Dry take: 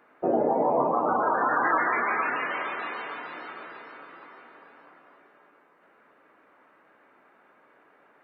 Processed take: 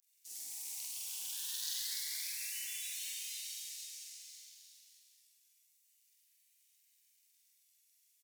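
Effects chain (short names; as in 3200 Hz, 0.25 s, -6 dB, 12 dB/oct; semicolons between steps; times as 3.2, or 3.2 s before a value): sample leveller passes 1; vibrato 0.34 Hz 85 cents; inverse Chebyshev high-pass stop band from 1400 Hz, stop band 70 dB; doubler 46 ms -2 dB; reverb RT60 1.1 s, pre-delay 30 ms, DRR -1 dB; gain +16.5 dB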